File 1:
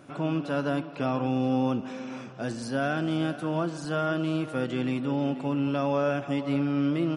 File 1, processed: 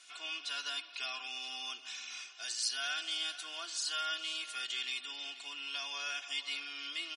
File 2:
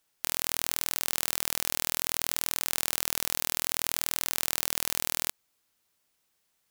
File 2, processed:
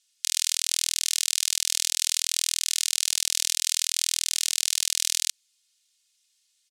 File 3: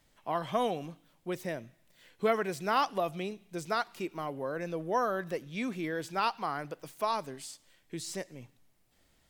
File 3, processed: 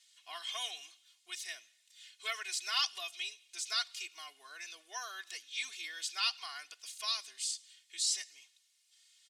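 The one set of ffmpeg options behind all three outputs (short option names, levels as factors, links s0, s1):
-af "asuperpass=centerf=5400:order=4:qfactor=0.9,aecho=1:1:2.8:0.91,volume=2.37"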